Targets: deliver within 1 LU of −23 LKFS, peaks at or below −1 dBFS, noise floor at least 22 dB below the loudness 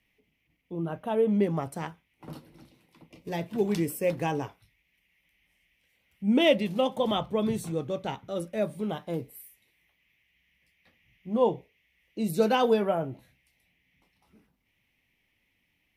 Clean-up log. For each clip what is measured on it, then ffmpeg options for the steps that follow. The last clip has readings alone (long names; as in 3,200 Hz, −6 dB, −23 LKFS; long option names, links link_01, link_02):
integrated loudness −28.5 LKFS; sample peak −10.0 dBFS; target loudness −23.0 LKFS
→ -af "volume=5.5dB"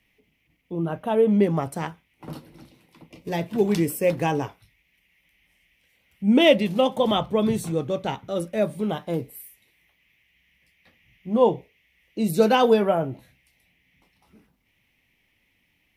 integrated loudness −23.0 LKFS; sample peak −4.5 dBFS; background noise floor −69 dBFS